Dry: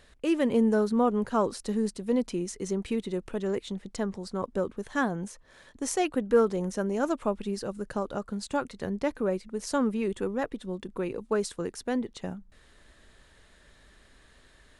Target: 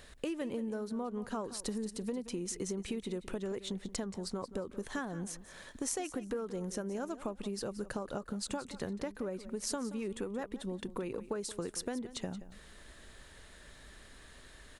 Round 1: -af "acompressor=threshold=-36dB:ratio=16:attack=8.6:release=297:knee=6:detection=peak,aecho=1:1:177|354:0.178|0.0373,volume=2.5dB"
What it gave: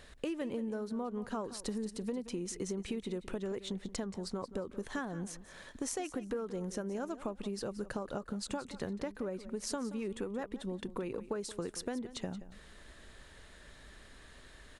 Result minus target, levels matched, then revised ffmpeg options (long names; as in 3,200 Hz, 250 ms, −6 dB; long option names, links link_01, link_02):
8,000 Hz band −2.5 dB
-af "acompressor=threshold=-36dB:ratio=16:attack=8.6:release=297:knee=6:detection=peak,highshelf=frequency=7800:gain=6.5,aecho=1:1:177|354:0.178|0.0373,volume=2.5dB"